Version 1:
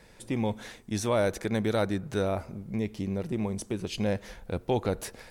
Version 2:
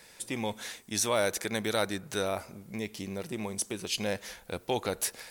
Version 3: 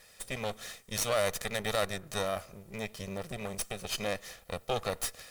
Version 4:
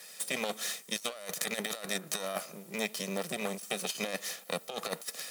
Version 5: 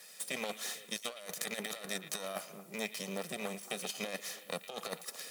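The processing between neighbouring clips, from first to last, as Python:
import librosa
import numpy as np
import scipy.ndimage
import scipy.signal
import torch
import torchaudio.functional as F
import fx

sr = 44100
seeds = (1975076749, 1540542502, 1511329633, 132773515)

y1 = fx.tilt_eq(x, sr, slope=3.0)
y2 = fx.lower_of_two(y1, sr, delay_ms=1.6)
y2 = y2 * librosa.db_to_amplitude(-1.5)
y3 = scipy.signal.sosfilt(scipy.signal.butter(8, 160.0, 'highpass', fs=sr, output='sos'), y2)
y3 = fx.high_shelf(y3, sr, hz=3400.0, db=8.0)
y3 = fx.over_compress(y3, sr, threshold_db=-34.0, ratio=-0.5)
y4 = fx.echo_stepped(y3, sr, ms=113, hz=2600.0, octaves=-1.4, feedback_pct=70, wet_db=-9)
y4 = y4 * librosa.db_to_amplitude(-4.5)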